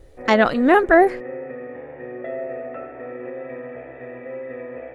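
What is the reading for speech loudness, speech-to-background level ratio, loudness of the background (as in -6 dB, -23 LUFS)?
-16.5 LUFS, 17.0 dB, -33.5 LUFS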